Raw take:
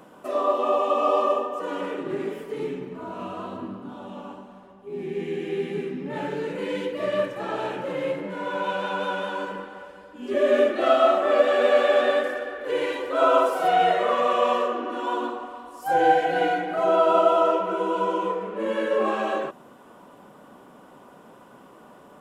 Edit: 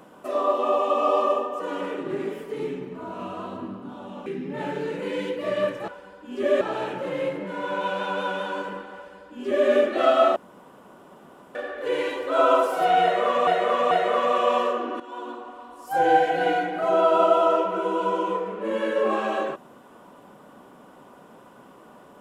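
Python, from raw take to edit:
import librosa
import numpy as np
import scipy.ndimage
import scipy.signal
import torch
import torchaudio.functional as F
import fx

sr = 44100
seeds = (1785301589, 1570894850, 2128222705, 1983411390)

y = fx.edit(x, sr, fx.cut(start_s=4.26, length_s=1.56),
    fx.duplicate(start_s=9.79, length_s=0.73, to_s=7.44),
    fx.room_tone_fill(start_s=11.19, length_s=1.19),
    fx.repeat(start_s=13.86, length_s=0.44, count=3),
    fx.fade_in_from(start_s=14.95, length_s=1.0, floor_db=-13.5), tone=tone)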